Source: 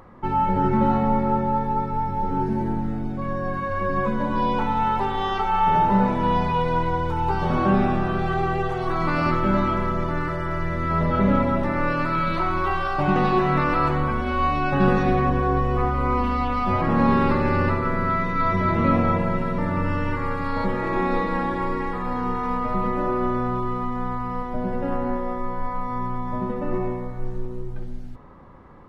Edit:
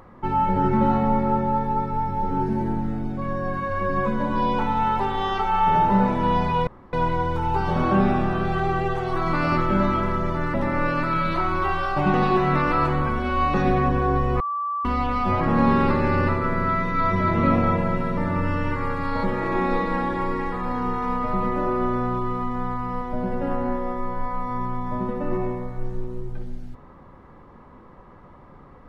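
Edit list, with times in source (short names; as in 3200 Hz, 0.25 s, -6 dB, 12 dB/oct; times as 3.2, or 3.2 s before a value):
6.67 insert room tone 0.26 s
10.28–11.56 cut
14.56–14.95 cut
15.81–16.26 bleep 1160 Hz -23.5 dBFS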